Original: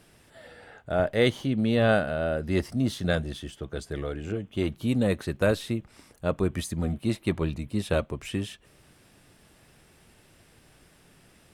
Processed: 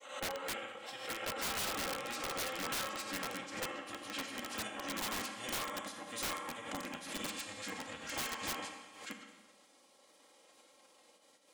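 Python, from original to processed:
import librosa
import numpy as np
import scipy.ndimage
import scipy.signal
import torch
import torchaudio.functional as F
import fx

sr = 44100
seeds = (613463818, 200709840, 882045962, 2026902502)

y = fx.octave_divider(x, sr, octaves=1, level_db=-5.0)
y = scipy.signal.sosfilt(scipy.signal.butter(2, 1200.0, 'highpass', fs=sr, output='sos'), y)
y = fx.spec_gate(y, sr, threshold_db=-10, keep='weak')
y = fx.high_shelf(y, sr, hz=2200.0, db=-11.0)
y = y + 0.68 * np.pad(y, (int(3.7 * sr / 1000.0), 0))[:len(y)]
y = fx.granulator(y, sr, seeds[0], grain_ms=100.0, per_s=20.0, spray_ms=950.0, spread_st=0)
y = fx.formant_shift(y, sr, semitones=-3)
y = fx.rev_schroeder(y, sr, rt60_s=1.2, comb_ms=29, drr_db=5.0)
y = (np.mod(10.0 ** (41.5 / 20.0) * y + 1.0, 2.0) - 1.0) / 10.0 ** (41.5 / 20.0)
y = fx.pre_swell(y, sr, db_per_s=82.0)
y = F.gain(torch.from_numpy(y), 10.0).numpy()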